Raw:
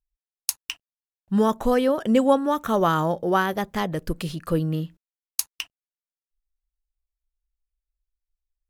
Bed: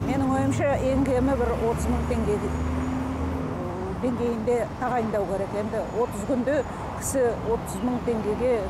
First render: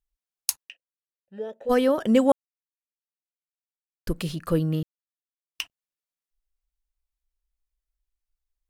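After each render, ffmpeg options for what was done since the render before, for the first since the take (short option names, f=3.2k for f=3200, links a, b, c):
-filter_complex "[0:a]asplit=3[a][b][c];[a]afade=t=out:st=0.63:d=0.02[d];[b]asplit=3[e][f][g];[e]bandpass=f=530:t=q:w=8,volume=0dB[h];[f]bandpass=f=1.84k:t=q:w=8,volume=-6dB[i];[g]bandpass=f=2.48k:t=q:w=8,volume=-9dB[j];[h][i][j]amix=inputs=3:normalize=0,afade=t=in:st=0.63:d=0.02,afade=t=out:st=1.69:d=0.02[k];[c]afade=t=in:st=1.69:d=0.02[l];[d][k][l]amix=inputs=3:normalize=0,asplit=5[m][n][o][p][q];[m]atrim=end=2.32,asetpts=PTS-STARTPTS,afade=t=out:st=2.316:d=0.004:c=hsin[r];[n]atrim=start=2.32:end=4.07,asetpts=PTS-STARTPTS,volume=0[s];[o]atrim=start=4.07:end=4.83,asetpts=PTS-STARTPTS,afade=t=in:d=0.004:c=hsin,afade=t=out:st=0.756:d=0.004:c=hsin[t];[p]atrim=start=4.83:end=5.55,asetpts=PTS-STARTPTS,volume=0[u];[q]atrim=start=5.55,asetpts=PTS-STARTPTS,afade=t=in:d=0.004:c=hsin[v];[r][s][t][u][v]concat=n=5:v=0:a=1"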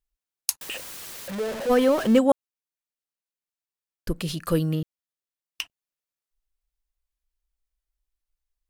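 -filter_complex "[0:a]asettb=1/sr,asplit=3[a][b][c];[a]atrim=end=0.614[d];[b]atrim=start=0.61:end=2.19,asetpts=PTS-STARTPTS,afade=t=in:d=0.004:c=qsin,afade=t=out:st=1.576:d=0.004:c=qsin,aeval=exprs='val(0)+0.5*0.0422*sgn(val(0))':c=same[e];[c]atrim=start=2.186[f];[d][e]acrossfade=d=0.004:c1=hsin:c2=qsin[g];[g][f]acrossfade=d=0.004:c1=qsin:c2=hsin,asplit=3[h][i][j];[h]afade=t=out:st=4.27:d=0.02[k];[i]highshelf=f=2k:g=8,afade=t=in:st=4.27:d=0.02,afade=t=out:st=4.73:d=0.02[l];[j]afade=t=in:st=4.73:d=0.02[m];[k][l][m]amix=inputs=3:normalize=0"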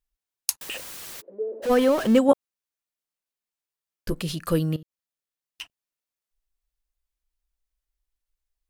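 -filter_complex "[0:a]asplit=3[a][b][c];[a]afade=t=out:st=1.2:d=0.02[d];[b]asuperpass=centerf=400:order=4:qfactor=2.2,afade=t=in:st=1.2:d=0.02,afade=t=out:st=1.62:d=0.02[e];[c]afade=t=in:st=1.62:d=0.02[f];[d][e][f]amix=inputs=3:normalize=0,asettb=1/sr,asplit=3[g][h][i];[g]atrim=end=2.274[j];[h]atrim=start=2.27:end=4.21,asetpts=PTS-STARTPTS,afade=t=in:d=0.004:c=qsin,afade=t=out:st=1.936:d=0.004:c=qsin,asplit=2[k][l];[l]adelay=14,volume=-5dB[m];[k][m]amix=inputs=2:normalize=0,atrim=end_sample=85554[n];[i]atrim=start=4.206[o];[j][n]acrossfade=d=0.004:c1=hsin:c2=qsin[p];[p][o]acrossfade=d=0.004:c1=qsin:c2=hsin,asettb=1/sr,asplit=3[q][r][s];[q]atrim=end=4.764[t];[r]atrim=start=4.76:end=5.61,asetpts=PTS-STARTPTS,afade=t=in:d=0.004:c=qsin,afade=t=out:st=0.846:d=0.004:c=qsin,acompressor=threshold=-45dB:ratio=3:attack=3.2:release=140:knee=1:detection=peak[u];[s]atrim=start=5.606[v];[t][u]acrossfade=d=0.004:c1=hsin:c2=qsin[w];[w][v]acrossfade=d=0.004:c1=qsin:c2=hsin"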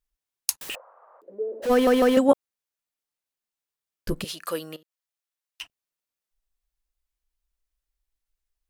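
-filter_complex "[0:a]asettb=1/sr,asplit=3[a][b][c];[a]atrim=end=0.754[d];[b]atrim=start=0.75:end=1.22,asetpts=PTS-STARTPTS,afade=t=in:d=0.004:c=qsin,afade=t=out:st=0.466:d=0.004:c=qsin,asuperpass=centerf=810:order=8:qfactor=1.1[e];[c]atrim=start=1.216[f];[d][e]acrossfade=d=0.004:c1=hsin:c2=qsin[g];[g][f]acrossfade=d=0.004:c1=qsin:c2=hsin,asettb=1/sr,asplit=3[h][i][j];[h]atrim=end=4.244[k];[i]atrim=start=4.24:end=5.61,asetpts=PTS-STARTPTS,afade=t=in:d=0.004:c=qsin,afade=t=out:st=1.366:d=0.004:c=qsin,highpass=560[l];[j]atrim=start=5.606[m];[k][l]acrossfade=d=0.004:c1=hsin:c2=qsin[n];[n][m]acrossfade=d=0.004:c1=qsin:c2=hsin,asplit=4[o][p][q][r];[o]atrim=end=1.872[s];[p]atrim=start=1.718:end=1.872[t];[q]atrim=start=1.718:end=1.872[u];[r]atrim=start=2.168[v];[s][t]acrossfade=d=0.004:c1=hsin:c2=hsin[w];[w][u]acrossfade=d=0.004:c1=hsin:c2=hsin[x];[x][v]acrossfade=d=0.004:c1=hsin:c2=hsin"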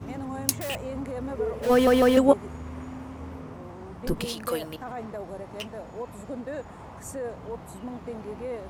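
-filter_complex "[1:a]volume=-11dB[a];[0:a][a]amix=inputs=2:normalize=0"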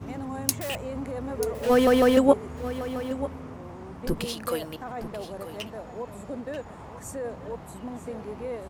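-af "aecho=1:1:938:0.211"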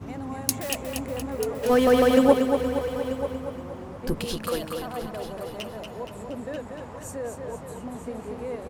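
-af "aecho=1:1:235|470|705|940|1175|1410|1645:0.501|0.271|0.146|0.0789|0.0426|0.023|0.0124"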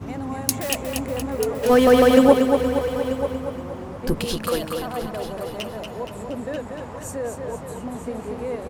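-af "volume=4.5dB,alimiter=limit=-1dB:level=0:latency=1"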